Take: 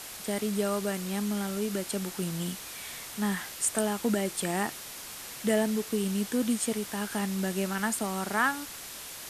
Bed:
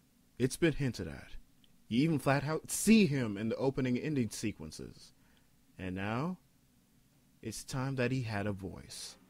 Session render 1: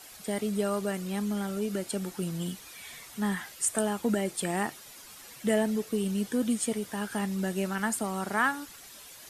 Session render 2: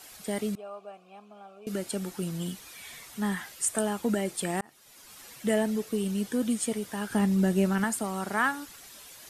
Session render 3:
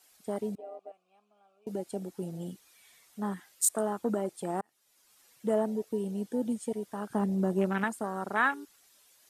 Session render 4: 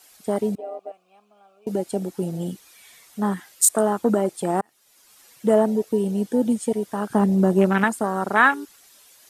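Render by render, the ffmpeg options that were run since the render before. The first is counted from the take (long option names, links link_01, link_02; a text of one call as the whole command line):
ffmpeg -i in.wav -af "afftdn=noise_reduction=10:noise_floor=-43" out.wav
ffmpeg -i in.wav -filter_complex "[0:a]asettb=1/sr,asplit=3[link_01][link_02][link_03];[link_01]atrim=end=0.554[link_04];[link_02]atrim=start=0.55:end=1.67,asetpts=PTS-STARTPTS,afade=type=in:duration=0.004:curve=qsin,afade=type=out:start_time=1.116:duration=0.004:curve=qsin,asplit=3[link_05][link_06][link_07];[link_05]bandpass=frequency=730:width_type=q:width=8,volume=0dB[link_08];[link_06]bandpass=frequency=1090:width_type=q:width=8,volume=-6dB[link_09];[link_07]bandpass=frequency=2440:width_type=q:width=8,volume=-9dB[link_10];[link_08][link_09][link_10]amix=inputs=3:normalize=0[link_11];[link_03]atrim=start=1.666[link_12];[link_04][link_11]acrossfade=duration=0.004:curve1=hsin:curve2=qsin[link_13];[link_13][link_12]acrossfade=duration=0.004:curve1=qsin:curve2=hsin,asettb=1/sr,asplit=3[link_14][link_15][link_16];[link_14]atrim=end=7.104[link_17];[link_15]atrim=start=7.1:end=7.84,asetpts=PTS-STARTPTS,afade=type=in:duration=0.004:curve=qsin,afade=type=out:start_time=0.736:duration=0.004:curve=qsin,lowshelf=frequency=490:gain=8.5[link_18];[link_16]atrim=start=7.836[link_19];[link_17][link_18]acrossfade=duration=0.004:curve1=hsin:curve2=qsin[link_20];[link_20][link_19]acrossfade=duration=0.004:curve1=qsin:curve2=hsin,asplit=2[link_21][link_22];[link_21]atrim=end=4.61,asetpts=PTS-STARTPTS,afade=type=out:start_time=4.606:duration=0.004:curve=hsin[link_23];[link_22]atrim=start=4.61,asetpts=PTS-STARTPTS,afade=type=in:duration=0.6[link_24];[link_23][link_24]concat=n=2:v=0:a=1" out.wav
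ffmpeg -i in.wav -af "afwtdn=0.0224,bass=frequency=250:gain=-7,treble=frequency=4000:gain=3" out.wav
ffmpeg -i in.wav -af "volume=10.5dB,alimiter=limit=-3dB:level=0:latency=1" out.wav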